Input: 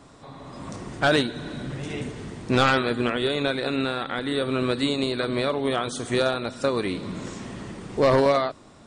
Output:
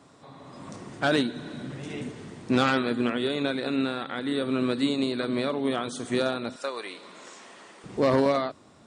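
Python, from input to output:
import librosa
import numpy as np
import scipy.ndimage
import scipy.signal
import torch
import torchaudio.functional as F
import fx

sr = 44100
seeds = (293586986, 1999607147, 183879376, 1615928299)

y = fx.highpass(x, sr, hz=fx.steps((0.0, 110.0), (6.56, 610.0), (7.84, 74.0)), slope=12)
y = fx.dynamic_eq(y, sr, hz=250.0, q=2.0, threshold_db=-37.0, ratio=4.0, max_db=6)
y = y * 10.0 ** (-4.5 / 20.0)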